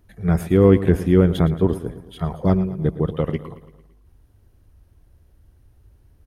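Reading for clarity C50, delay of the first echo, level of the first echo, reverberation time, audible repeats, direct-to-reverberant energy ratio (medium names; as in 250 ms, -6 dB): no reverb, 112 ms, -15.0 dB, no reverb, 4, no reverb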